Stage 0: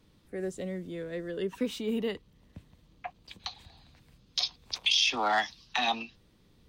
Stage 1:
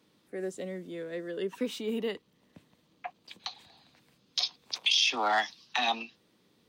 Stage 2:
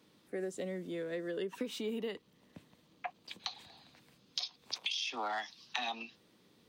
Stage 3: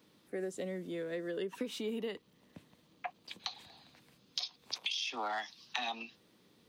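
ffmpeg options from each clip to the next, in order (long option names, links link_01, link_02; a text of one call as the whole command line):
ffmpeg -i in.wav -af "highpass=220" out.wav
ffmpeg -i in.wav -af "acompressor=threshold=-35dB:ratio=10,volume=1dB" out.wav
ffmpeg -i in.wav -af "aexciter=amount=1.2:drive=4.5:freq=11000" out.wav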